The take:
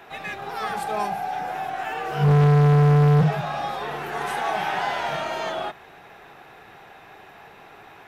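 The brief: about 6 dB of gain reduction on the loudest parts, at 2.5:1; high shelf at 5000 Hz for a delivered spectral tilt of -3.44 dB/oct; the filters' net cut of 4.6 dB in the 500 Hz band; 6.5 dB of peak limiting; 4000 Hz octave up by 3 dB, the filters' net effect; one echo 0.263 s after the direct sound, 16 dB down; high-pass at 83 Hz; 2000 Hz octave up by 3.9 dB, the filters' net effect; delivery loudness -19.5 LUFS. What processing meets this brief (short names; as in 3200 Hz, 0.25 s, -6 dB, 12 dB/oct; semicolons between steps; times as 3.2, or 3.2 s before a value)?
HPF 83 Hz; bell 500 Hz -6 dB; bell 2000 Hz +5.5 dB; bell 4000 Hz +5 dB; high shelf 5000 Hz -8 dB; compressor 2.5:1, threshold -23 dBFS; limiter -20.5 dBFS; echo 0.263 s -16 dB; gain +10 dB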